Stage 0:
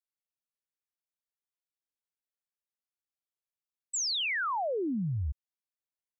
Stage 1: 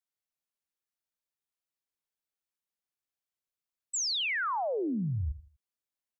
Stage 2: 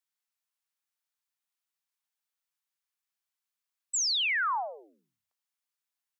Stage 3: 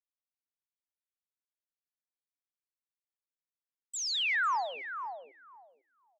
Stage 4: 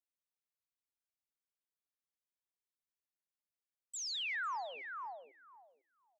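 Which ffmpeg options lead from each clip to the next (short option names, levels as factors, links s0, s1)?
-filter_complex "[0:a]asplit=2[s0][s1];[s1]adelay=81,lowpass=f=1100:p=1,volume=0.188,asplit=2[s2][s3];[s3]adelay=81,lowpass=f=1100:p=1,volume=0.31,asplit=2[s4][s5];[s5]adelay=81,lowpass=f=1100:p=1,volume=0.31[s6];[s0][s2][s4][s6]amix=inputs=4:normalize=0"
-af "highpass=f=810:w=0.5412,highpass=f=810:w=1.3066,volume=1.41"
-filter_complex "[0:a]afwtdn=0.01,aemphasis=mode=reproduction:type=50fm,asplit=2[s0][s1];[s1]adelay=500,lowpass=f=1100:p=1,volume=0.501,asplit=2[s2][s3];[s3]adelay=500,lowpass=f=1100:p=1,volume=0.2,asplit=2[s4][s5];[s5]adelay=500,lowpass=f=1100:p=1,volume=0.2[s6];[s0][s2][s4][s6]amix=inputs=4:normalize=0"
-af "acompressor=threshold=0.02:ratio=2,volume=0.531"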